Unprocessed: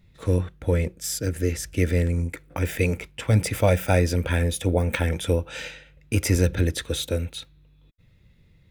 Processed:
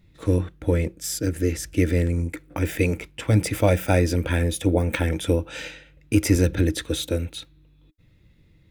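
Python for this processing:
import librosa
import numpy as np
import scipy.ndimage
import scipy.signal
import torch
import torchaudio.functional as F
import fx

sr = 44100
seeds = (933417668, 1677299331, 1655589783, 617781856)

y = fx.peak_eq(x, sr, hz=310.0, db=11.5, octaves=0.23)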